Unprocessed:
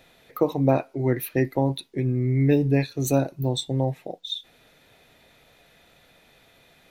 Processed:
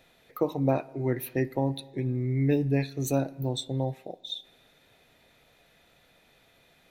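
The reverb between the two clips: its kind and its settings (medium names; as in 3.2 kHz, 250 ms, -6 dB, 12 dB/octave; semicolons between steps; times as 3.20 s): spring tank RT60 1.7 s, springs 33/51 ms, chirp 30 ms, DRR 19.5 dB; trim -5 dB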